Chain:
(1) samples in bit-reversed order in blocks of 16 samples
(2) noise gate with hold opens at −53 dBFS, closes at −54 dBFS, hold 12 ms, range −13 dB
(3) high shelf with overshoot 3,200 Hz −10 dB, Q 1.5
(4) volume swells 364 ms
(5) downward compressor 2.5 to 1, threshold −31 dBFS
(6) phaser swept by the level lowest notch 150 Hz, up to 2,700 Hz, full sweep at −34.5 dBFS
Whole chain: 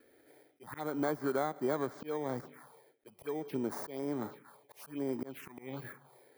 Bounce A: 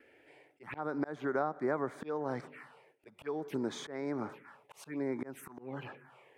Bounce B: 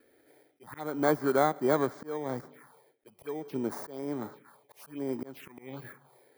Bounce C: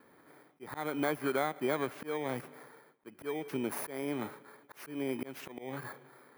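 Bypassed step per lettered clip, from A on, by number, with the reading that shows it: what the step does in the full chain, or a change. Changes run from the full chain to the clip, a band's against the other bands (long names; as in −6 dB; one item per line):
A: 1, 4 kHz band +3.5 dB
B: 5, average gain reduction 1.5 dB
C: 6, 4 kHz band +6.0 dB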